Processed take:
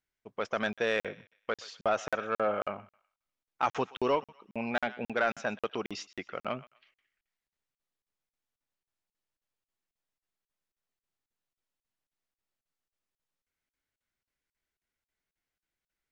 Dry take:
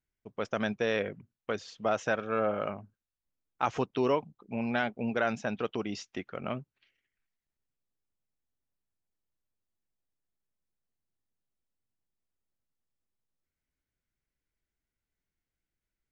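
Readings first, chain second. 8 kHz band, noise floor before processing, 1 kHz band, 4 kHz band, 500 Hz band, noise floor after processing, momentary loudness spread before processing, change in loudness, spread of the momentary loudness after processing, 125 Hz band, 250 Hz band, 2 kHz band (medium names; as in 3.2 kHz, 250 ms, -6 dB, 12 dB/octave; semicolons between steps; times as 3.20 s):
no reading, under -85 dBFS, +1.0 dB, +1.0 dB, -1.0 dB, under -85 dBFS, 10 LU, -0.5 dB, 10 LU, -6.5 dB, -4.5 dB, +1.0 dB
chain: thinning echo 124 ms, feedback 34%, high-pass 960 Hz, level -18 dB; overdrive pedal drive 10 dB, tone 4.5 kHz, clips at -13.5 dBFS; crackling interface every 0.27 s, samples 2048, zero, from 0.73 s; trim -1.5 dB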